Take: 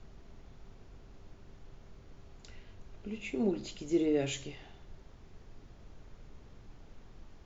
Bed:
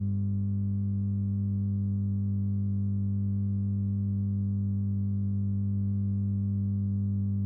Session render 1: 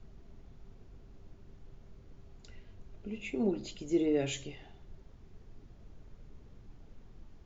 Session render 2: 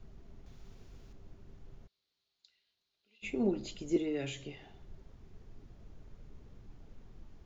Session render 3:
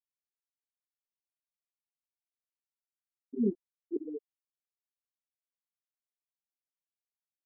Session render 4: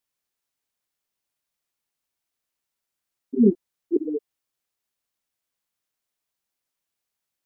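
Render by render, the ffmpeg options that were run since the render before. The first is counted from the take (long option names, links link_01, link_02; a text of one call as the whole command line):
ffmpeg -i in.wav -af "afftdn=noise_reduction=6:noise_floor=-55" out.wav
ffmpeg -i in.wav -filter_complex "[0:a]asettb=1/sr,asplit=3[link_01][link_02][link_03];[link_01]atrim=end=0.464[link_04];[link_02]atrim=start=0.46:end=1.13,asetpts=PTS-STARTPTS,afade=type=in:duration=0.004:curve=qsin,afade=type=out:start_time=0.666:duration=0.004:curve=qsin,highshelf=frequency=2100:gain=10[link_05];[link_03]atrim=start=1.126[link_06];[link_04][link_05]acrossfade=duration=0.004:curve1=hsin:curve2=qsin[link_07];[link_07][link_06]acrossfade=duration=0.004:curve1=qsin:curve2=hsin,asplit=3[link_08][link_09][link_10];[link_08]afade=type=out:start_time=1.86:duration=0.02[link_11];[link_09]bandpass=frequency=4100:width_type=q:width=4.4,afade=type=in:start_time=1.86:duration=0.02,afade=type=out:start_time=3.22:duration=0.02[link_12];[link_10]afade=type=in:start_time=3.22:duration=0.02[link_13];[link_11][link_12][link_13]amix=inputs=3:normalize=0,asettb=1/sr,asplit=3[link_14][link_15][link_16];[link_14]atrim=end=3.964[link_17];[link_15]atrim=start=3.96:end=4.74,asetpts=PTS-STARTPTS,afade=type=in:duration=0.004:curve=qsin,afade=type=out:start_time=0.776:duration=0.004:curve=qsin,acrossover=split=100|350|990|4300[link_18][link_19][link_20][link_21][link_22];[link_18]acompressor=threshold=-59dB:ratio=3[link_23];[link_19]acompressor=threshold=-37dB:ratio=3[link_24];[link_20]acompressor=threshold=-43dB:ratio=3[link_25];[link_21]acompressor=threshold=-44dB:ratio=3[link_26];[link_22]acompressor=threshold=-55dB:ratio=3[link_27];[link_23][link_24][link_25][link_26][link_27]amix=inputs=5:normalize=0[link_28];[link_16]atrim=start=4.736[link_29];[link_17][link_28]acrossfade=duration=0.004:curve1=hsin:curve2=qsin[link_30];[link_30][link_29]acrossfade=duration=0.004:curve1=qsin:curve2=hsin" out.wav
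ffmpeg -i in.wav -af "afftfilt=real='re*gte(hypot(re,im),0.178)':imag='im*gte(hypot(re,im),0.178)':win_size=1024:overlap=0.75,aecho=1:1:4.5:0.56" out.wav
ffmpeg -i in.wav -af "volume=12dB" out.wav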